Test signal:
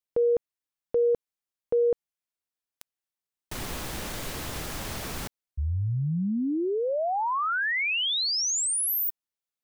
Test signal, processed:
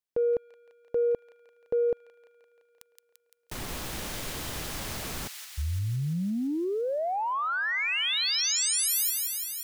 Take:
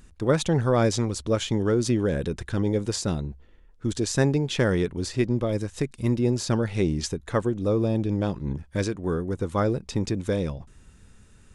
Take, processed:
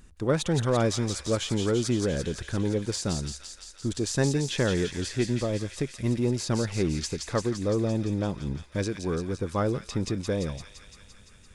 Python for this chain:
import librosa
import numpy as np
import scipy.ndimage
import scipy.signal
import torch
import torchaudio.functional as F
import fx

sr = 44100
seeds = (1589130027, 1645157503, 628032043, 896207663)

p1 = 10.0 ** (-24.5 / 20.0) * np.tanh(x / 10.0 ** (-24.5 / 20.0))
p2 = x + (p1 * 10.0 ** (-10.5 / 20.0))
p3 = fx.echo_wet_highpass(p2, sr, ms=171, feedback_pct=73, hz=2200.0, wet_db=-4)
y = p3 * 10.0 ** (-4.0 / 20.0)